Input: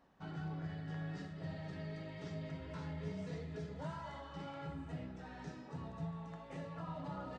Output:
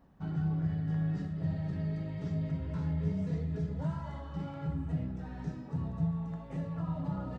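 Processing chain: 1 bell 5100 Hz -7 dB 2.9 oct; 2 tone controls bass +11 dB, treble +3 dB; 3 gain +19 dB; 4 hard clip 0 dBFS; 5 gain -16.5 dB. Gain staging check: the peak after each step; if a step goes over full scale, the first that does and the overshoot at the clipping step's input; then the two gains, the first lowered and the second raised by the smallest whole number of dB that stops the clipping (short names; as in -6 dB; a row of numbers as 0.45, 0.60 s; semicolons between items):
-31.5, -23.0, -4.0, -4.0, -20.5 dBFS; no overload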